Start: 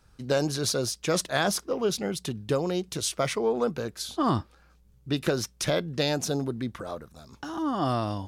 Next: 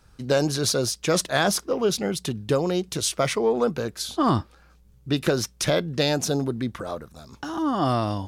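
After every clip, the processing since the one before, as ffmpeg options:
ffmpeg -i in.wav -af "acontrast=84,volume=-3dB" out.wav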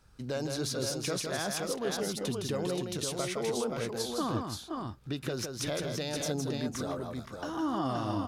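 ffmpeg -i in.wav -filter_complex "[0:a]alimiter=limit=-19dB:level=0:latency=1:release=226,asplit=2[link_01][link_02];[link_02]aecho=0:1:162|500|525:0.562|0.158|0.596[link_03];[link_01][link_03]amix=inputs=2:normalize=0,volume=-6dB" out.wav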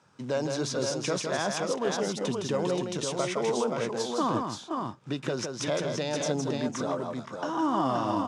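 ffmpeg -i in.wav -af "acrusher=bits=6:mode=log:mix=0:aa=0.000001,highpass=frequency=130:width=0.5412,highpass=frequency=130:width=1.3066,equalizer=frequency=580:width_type=q:width=4:gain=3,equalizer=frequency=970:width_type=q:width=4:gain=7,equalizer=frequency=4300:width_type=q:width=4:gain=-6,lowpass=frequency=7700:width=0.5412,lowpass=frequency=7700:width=1.3066,volume=3.5dB" out.wav

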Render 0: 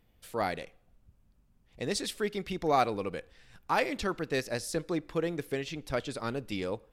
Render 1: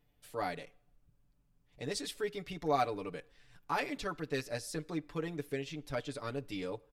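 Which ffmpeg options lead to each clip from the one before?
ffmpeg -i in.wav -af "aecho=1:1:6.9:0.79,volume=-7.5dB" out.wav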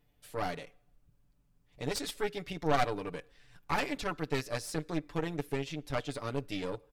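ffmpeg -i in.wav -af "aeval=exprs='0.141*(cos(1*acos(clip(val(0)/0.141,-1,1)))-cos(1*PI/2))+0.00794*(cos(5*acos(clip(val(0)/0.141,-1,1)))-cos(5*PI/2))+0.0316*(cos(6*acos(clip(val(0)/0.141,-1,1)))-cos(6*PI/2))':channel_layout=same" out.wav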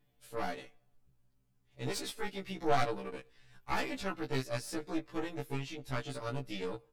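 ffmpeg -i in.wav -af "afftfilt=real='re*1.73*eq(mod(b,3),0)':imag='im*1.73*eq(mod(b,3),0)':win_size=2048:overlap=0.75" out.wav

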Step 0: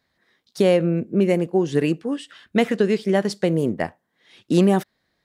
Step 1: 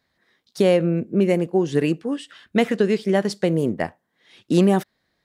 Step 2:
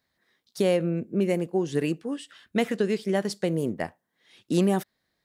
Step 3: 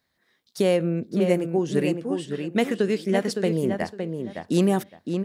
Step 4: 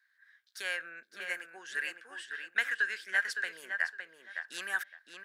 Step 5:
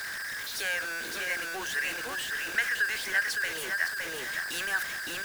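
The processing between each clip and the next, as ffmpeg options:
ffmpeg -i in.wav -af anull out.wav
ffmpeg -i in.wav -af "highshelf=frequency=7200:gain=8,volume=-6dB" out.wav
ffmpeg -i in.wav -filter_complex "[0:a]asplit=2[link_01][link_02];[link_02]adelay=562,lowpass=frequency=2800:poles=1,volume=-6dB,asplit=2[link_03][link_04];[link_04]adelay=562,lowpass=frequency=2800:poles=1,volume=0.21,asplit=2[link_05][link_06];[link_06]adelay=562,lowpass=frequency=2800:poles=1,volume=0.21[link_07];[link_01][link_03][link_05][link_07]amix=inputs=4:normalize=0,volume=2dB" out.wav
ffmpeg -i in.wav -af "highpass=frequency=1600:width_type=q:width=13,volume=-8dB" out.wav
ffmpeg -i in.wav -af "aeval=exprs='val(0)+0.5*0.0299*sgn(val(0))':channel_layout=same" out.wav

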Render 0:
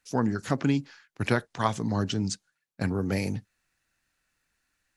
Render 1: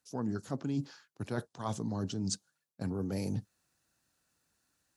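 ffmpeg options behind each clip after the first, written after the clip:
ffmpeg -i in.wav -af "areverse,acompressor=threshold=-33dB:ratio=12,areverse,highpass=81,equalizer=frequency=2100:width=1.2:gain=-12,volume=3dB" out.wav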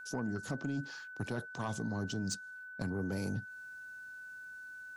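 ffmpeg -i in.wav -af "acompressor=threshold=-40dB:ratio=6,asoftclip=type=tanh:threshold=-35dB,aeval=exprs='val(0)+0.00224*sin(2*PI*1500*n/s)':channel_layout=same,volume=7.5dB" out.wav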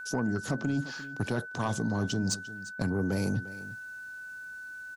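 ffmpeg -i in.wav -af "aecho=1:1:349:0.158,volume=7dB" out.wav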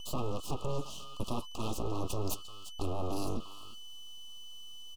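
ffmpeg -i in.wav -af "aeval=exprs='abs(val(0))':channel_layout=same,asuperstop=centerf=1800:order=20:qfactor=1.4,volume=-1dB" out.wav

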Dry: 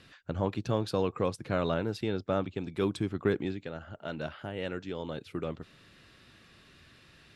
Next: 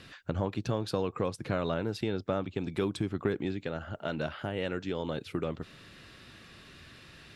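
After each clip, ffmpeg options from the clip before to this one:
ffmpeg -i in.wav -af "acompressor=threshold=-35dB:ratio=2.5,volume=5.5dB" out.wav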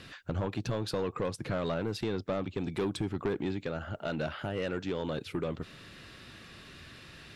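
ffmpeg -i in.wav -af "asoftclip=type=tanh:threshold=-26.5dB,volume=2dB" out.wav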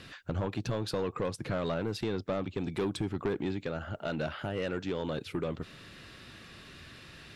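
ffmpeg -i in.wav -af anull out.wav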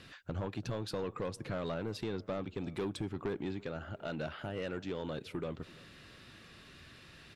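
ffmpeg -i in.wav -filter_complex "[0:a]asplit=2[link_01][link_02];[link_02]adelay=336,lowpass=frequency=2500:poles=1,volume=-22.5dB,asplit=2[link_03][link_04];[link_04]adelay=336,lowpass=frequency=2500:poles=1,volume=0.51,asplit=2[link_05][link_06];[link_06]adelay=336,lowpass=frequency=2500:poles=1,volume=0.51[link_07];[link_01][link_03][link_05][link_07]amix=inputs=4:normalize=0,volume=-5dB" out.wav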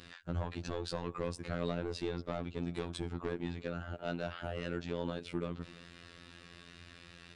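ffmpeg -i in.wav -af "aresample=22050,aresample=44100,afftfilt=real='hypot(re,im)*cos(PI*b)':imag='0':win_size=2048:overlap=0.75,volume=4dB" out.wav

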